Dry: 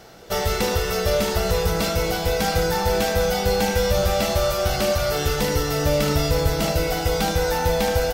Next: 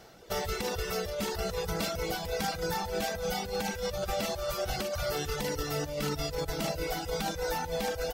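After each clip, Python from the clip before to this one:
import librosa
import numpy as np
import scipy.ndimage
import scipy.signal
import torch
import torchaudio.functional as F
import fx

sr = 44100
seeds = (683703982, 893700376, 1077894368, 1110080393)

y = fx.dereverb_blind(x, sr, rt60_s=0.74)
y = fx.over_compress(y, sr, threshold_db=-23.0, ratio=-0.5)
y = y * librosa.db_to_amplitude(-8.5)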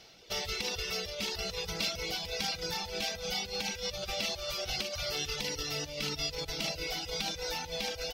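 y = fx.band_shelf(x, sr, hz=3600.0, db=12.0, octaves=1.7)
y = y * librosa.db_to_amplitude(-7.0)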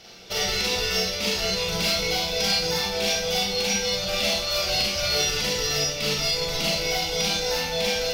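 y = np.clip(x, -10.0 ** (-28.5 / 20.0), 10.0 ** (-28.5 / 20.0))
y = fx.rev_schroeder(y, sr, rt60_s=0.57, comb_ms=32, drr_db=-4.0)
y = y * librosa.db_to_amplitude(5.5)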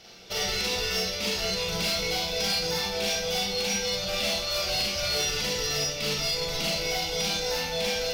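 y = np.clip(10.0 ** (19.0 / 20.0) * x, -1.0, 1.0) / 10.0 ** (19.0 / 20.0)
y = y * librosa.db_to_amplitude(-3.0)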